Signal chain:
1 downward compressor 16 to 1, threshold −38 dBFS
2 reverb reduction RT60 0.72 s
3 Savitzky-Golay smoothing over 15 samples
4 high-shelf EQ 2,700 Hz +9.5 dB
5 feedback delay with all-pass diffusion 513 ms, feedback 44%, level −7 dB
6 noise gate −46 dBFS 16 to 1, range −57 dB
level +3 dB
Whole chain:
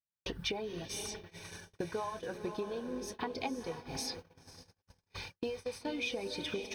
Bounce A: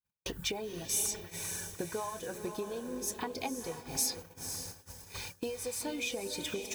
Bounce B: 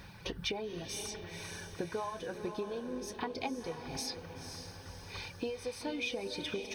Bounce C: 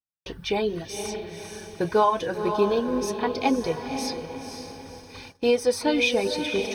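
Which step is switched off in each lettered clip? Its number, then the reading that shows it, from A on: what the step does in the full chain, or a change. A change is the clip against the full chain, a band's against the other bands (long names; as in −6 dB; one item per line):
3, 8 kHz band +11.5 dB
6, change in momentary loudness spread −4 LU
1, average gain reduction 7.5 dB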